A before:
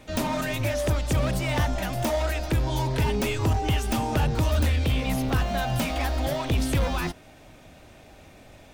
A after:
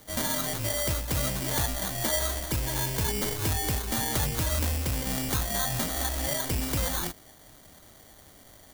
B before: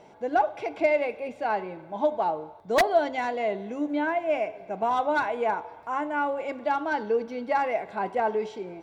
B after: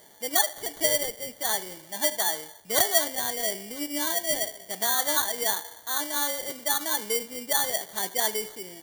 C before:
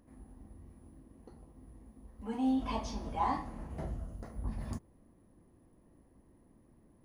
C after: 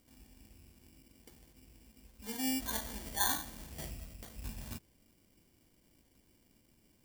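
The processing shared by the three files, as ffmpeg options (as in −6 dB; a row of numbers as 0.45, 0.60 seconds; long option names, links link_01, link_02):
-af "acrusher=samples=17:mix=1:aa=0.000001,crystalizer=i=4:c=0,volume=-6.5dB"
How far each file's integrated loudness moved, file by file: −2.0, +1.5, −0.5 LU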